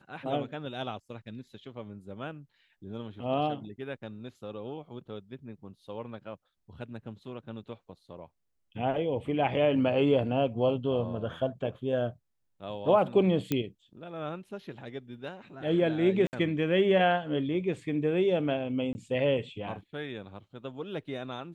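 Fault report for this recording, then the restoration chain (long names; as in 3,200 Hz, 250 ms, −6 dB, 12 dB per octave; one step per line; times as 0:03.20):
0:13.52: click −14 dBFS
0:16.27–0:16.33: drop-out 59 ms
0:18.93–0:18.95: drop-out 20 ms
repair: click removal
repair the gap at 0:16.27, 59 ms
repair the gap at 0:18.93, 20 ms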